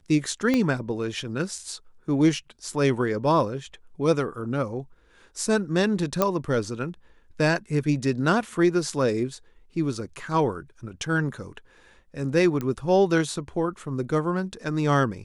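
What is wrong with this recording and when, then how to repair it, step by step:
0.54 pop -11 dBFS
6.22 pop -7 dBFS
12.61 pop -17 dBFS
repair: de-click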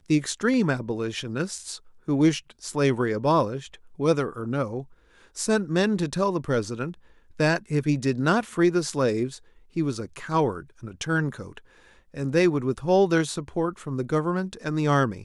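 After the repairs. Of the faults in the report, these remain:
0.54 pop
12.61 pop

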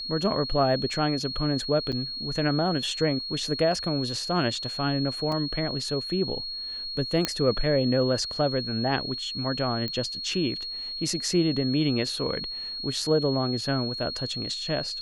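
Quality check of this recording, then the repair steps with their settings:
tone 4300 Hz -32 dBFS
1.92–1.93 gap 6.9 ms
5.32 gap 3.4 ms
7.25 pop -8 dBFS
9.88 pop -18 dBFS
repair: de-click; notch 4300 Hz, Q 30; interpolate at 1.92, 6.9 ms; interpolate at 5.32, 3.4 ms

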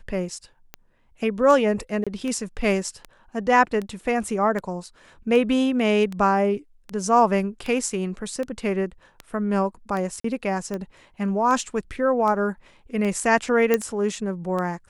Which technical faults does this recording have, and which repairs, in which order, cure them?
tick 78 rpm -18 dBFS
2.04–2.07 gap 26 ms
10.2–10.24 gap 44 ms
13.74 pop -7 dBFS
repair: de-click; interpolate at 2.04, 26 ms; interpolate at 10.2, 44 ms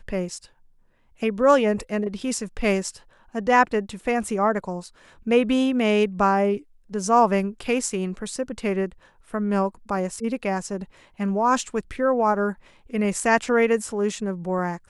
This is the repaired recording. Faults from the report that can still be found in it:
none

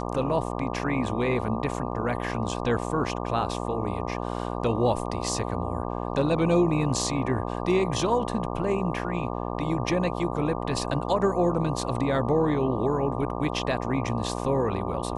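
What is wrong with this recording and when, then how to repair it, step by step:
buzz 60 Hz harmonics 20 -31 dBFS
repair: de-hum 60 Hz, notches 20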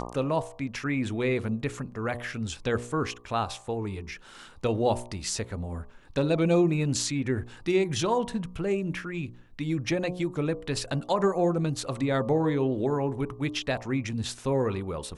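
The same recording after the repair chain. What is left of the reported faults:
none

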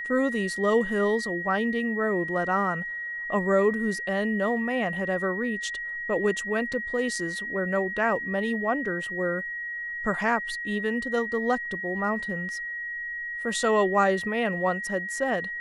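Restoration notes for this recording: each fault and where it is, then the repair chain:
tone 1900 Hz -31 dBFS
6.73–6.74 gap 5 ms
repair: notch 1900 Hz, Q 30; interpolate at 6.73, 5 ms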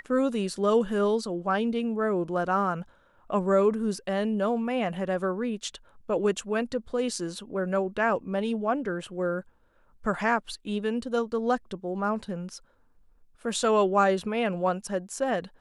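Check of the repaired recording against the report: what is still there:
none

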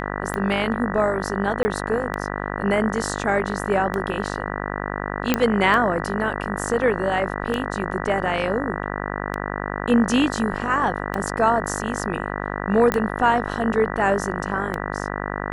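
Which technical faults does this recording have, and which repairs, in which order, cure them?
buzz 50 Hz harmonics 39 -28 dBFS
tick 33 1/3 rpm -12 dBFS
1.63–1.65 gap 20 ms
5.34 pop -3 dBFS
12.92 pop -7 dBFS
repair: de-click; de-hum 50 Hz, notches 39; interpolate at 1.63, 20 ms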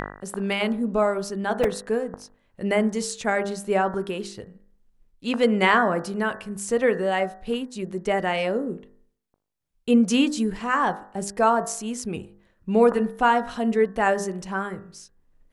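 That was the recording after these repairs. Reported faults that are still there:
none

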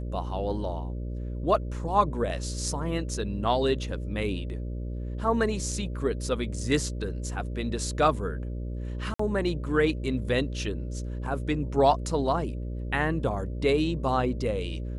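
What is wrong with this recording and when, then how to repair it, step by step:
buzz 60 Hz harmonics 10 -33 dBFS
9.14–9.19 gap 54 ms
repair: de-hum 60 Hz, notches 10; interpolate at 9.14, 54 ms

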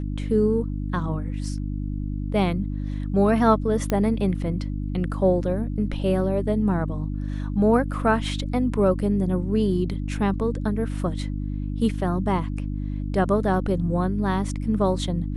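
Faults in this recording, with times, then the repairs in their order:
hum 50 Hz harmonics 6 -28 dBFS
3.9 pop -11 dBFS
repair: de-click; de-hum 50 Hz, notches 6

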